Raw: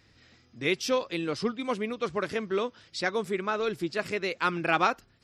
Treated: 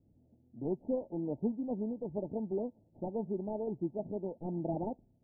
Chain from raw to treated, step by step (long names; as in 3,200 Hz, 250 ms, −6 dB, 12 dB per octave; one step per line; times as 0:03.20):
running median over 41 samples
Chebyshev low-pass with heavy ripple 910 Hz, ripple 6 dB
low-pass that shuts in the quiet parts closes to 630 Hz, open at −35 dBFS